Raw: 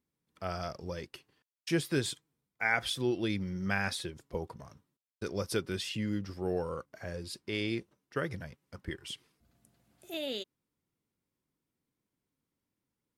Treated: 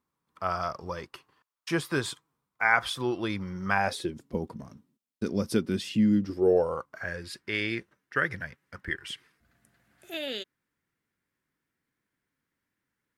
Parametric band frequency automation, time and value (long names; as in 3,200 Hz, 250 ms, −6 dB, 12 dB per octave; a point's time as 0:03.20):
parametric band +14.5 dB 0.97 octaves
0:03.72 1,100 Hz
0:04.12 230 Hz
0:06.18 230 Hz
0:07.09 1,700 Hz